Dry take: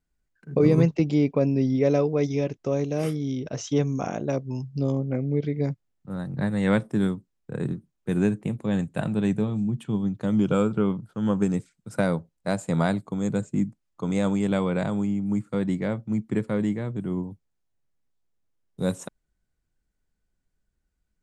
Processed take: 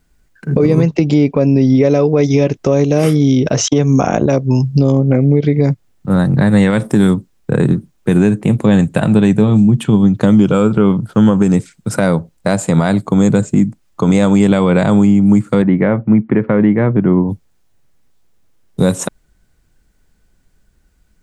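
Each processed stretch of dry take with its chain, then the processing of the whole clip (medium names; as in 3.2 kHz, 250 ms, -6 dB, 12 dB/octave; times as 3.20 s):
3.68–4.26 s: expander -27 dBFS + three bands compressed up and down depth 100%
6.70–7.14 s: treble shelf 7.5 kHz +9 dB + compression 3:1, threshold -22 dBFS
15.62–17.29 s: low-pass 2.3 kHz 24 dB/octave + bass shelf 76 Hz -11.5 dB
whole clip: compression, threshold -27 dBFS; loudness maximiser +21.5 dB; trim -1 dB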